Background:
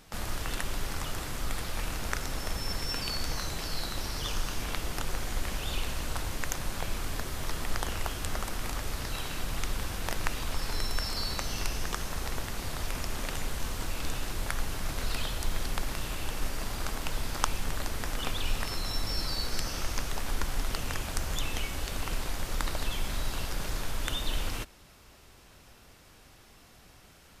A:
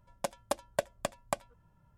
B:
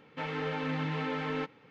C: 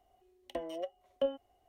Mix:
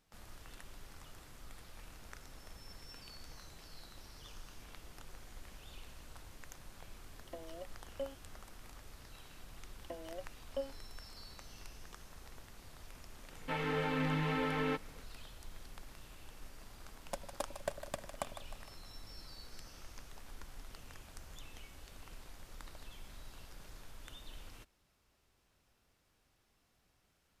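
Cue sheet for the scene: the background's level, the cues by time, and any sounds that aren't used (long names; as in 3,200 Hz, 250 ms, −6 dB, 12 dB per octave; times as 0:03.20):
background −19.5 dB
0:06.78: mix in C −10 dB
0:09.35: mix in C −8 dB
0:13.31: mix in B −1 dB
0:16.89: mix in A −8 dB + echo with a time of its own for lows and highs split 550 Hz, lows 100 ms, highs 154 ms, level −9.5 dB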